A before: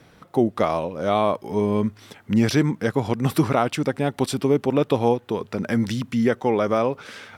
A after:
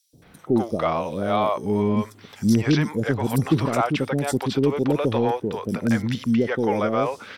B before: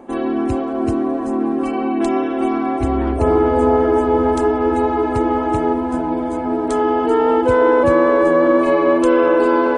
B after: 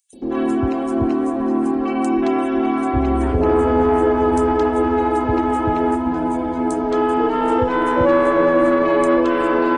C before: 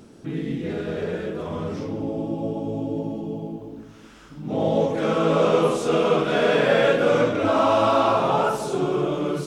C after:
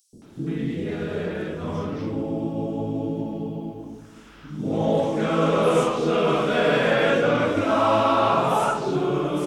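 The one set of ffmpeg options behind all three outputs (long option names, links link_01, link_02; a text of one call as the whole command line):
ffmpeg -i in.wav -filter_complex "[0:a]asoftclip=type=tanh:threshold=-7dB,acrossover=split=510|5200[link_01][link_02][link_03];[link_01]adelay=130[link_04];[link_02]adelay=220[link_05];[link_04][link_05][link_03]amix=inputs=3:normalize=0,volume=1.5dB" out.wav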